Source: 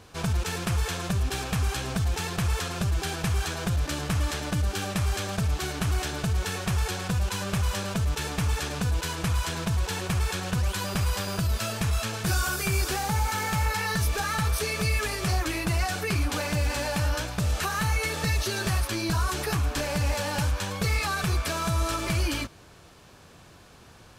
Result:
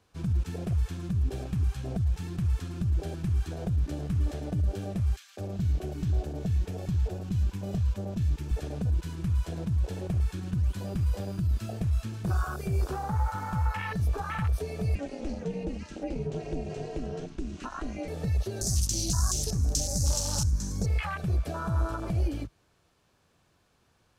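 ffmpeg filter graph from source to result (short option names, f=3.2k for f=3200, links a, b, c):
-filter_complex "[0:a]asettb=1/sr,asplit=3[a][b][c];[a]atrim=end=5.164[d];[b]atrim=start=5.16:end=8.51,asetpts=PTS-STARTPTS,afade=t=in:d=0.004:c=qsin,afade=t=out:st=3.346:d=0.004:c=qsin,equalizer=f=9.2k:w=7.7:g=-8,acrossover=split=1400[e][f];[e]adelay=210[g];[g][f]amix=inputs=2:normalize=0,atrim=end_sample=147735[h];[c]atrim=start=8.506[i];[d][h]acrossfade=d=0.004:c1=hsin:c2=qsin[j];[j][i]acrossfade=d=0.004:c1=qsin:c2=hsin,asettb=1/sr,asplit=3[k][l][m];[k]atrim=end=14.954[n];[l]atrim=start=14.95:end=18.08,asetpts=PTS-STARTPTS,afade=t=in:d=0.004:c=qsin,afade=t=out:st=3.126:d=0.004:c=qsin,highpass=120,equalizer=f=300:t=q:w=4:g=9,equalizer=f=470:t=q:w=4:g=8,equalizer=f=710:t=q:w=4:g=-8,equalizer=f=2.8k:t=q:w=4:g=5,equalizer=f=6.3k:t=q:w=4:g=4,lowpass=f=8.2k:w=0.5412,lowpass=f=8.2k:w=1.3066,aeval=exprs='val(0)*sin(2*PI*140*n/s)':c=same[o];[m]atrim=start=18.076[p];[n][o]acrossfade=d=0.004:c1=hsin:c2=qsin[q];[q][p]acrossfade=d=0.004:c1=qsin:c2=hsin,asettb=1/sr,asplit=3[r][s][t];[r]atrim=end=18.614[u];[s]atrim=start=18.61:end=20.86,asetpts=PTS-STARTPTS,afade=t=in:d=0.004:c=qsin,afade=t=out:st=2.246:d=0.004:c=qsin,acrossover=split=8200[v][w];[w]acompressor=threshold=-49dB:ratio=4:attack=1:release=60[x];[v][x]amix=inputs=2:normalize=0,highshelf=f=4.3k:t=q:w=3:g=13,aeval=exprs='val(0)+0.0251*(sin(2*PI*50*n/s)+sin(2*PI*2*50*n/s)/2+sin(2*PI*3*50*n/s)/3+sin(2*PI*4*50*n/s)/4+sin(2*PI*5*50*n/s)/5)':c=same[y];[t]atrim=start=20.856[z];[u][y]acrossfade=d=0.004:c1=hsin:c2=qsin[aa];[aa][z]acrossfade=d=0.004:c1=qsin:c2=hsin,afwtdn=0.0447,acrossover=split=140[ab][ac];[ac]acompressor=threshold=-34dB:ratio=2[ad];[ab][ad]amix=inputs=2:normalize=0"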